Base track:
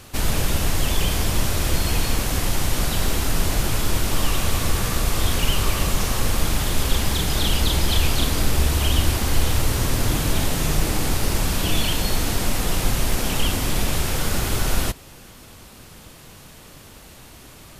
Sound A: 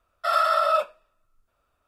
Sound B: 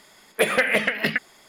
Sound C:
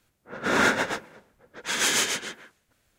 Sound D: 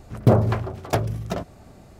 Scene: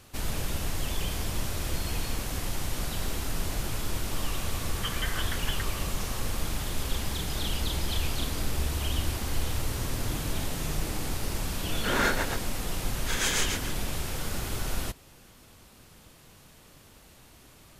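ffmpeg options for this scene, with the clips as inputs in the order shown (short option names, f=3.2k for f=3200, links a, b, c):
-filter_complex "[0:a]volume=-10dB[a];[2:a]lowpass=f=3.1k:t=q:w=0.5098,lowpass=f=3.1k:t=q:w=0.6013,lowpass=f=3.1k:t=q:w=0.9,lowpass=f=3.1k:t=q:w=2.563,afreqshift=-3600,atrim=end=1.48,asetpts=PTS-STARTPTS,volume=-15.5dB,afade=t=in:d=0.004:c=hsin,afade=t=out:st=1.476:d=0.004:c=hsin,adelay=4440[b];[3:a]atrim=end=2.98,asetpts=PTS-STARTPTS,volume=-5dB,afade=t=in:d=0.004:c=hsin,afade=t=out:st=2.976:d=0.004:c=hsin,adelay=11400[c];[a][b][c]amix=inputs=3:normalize=0"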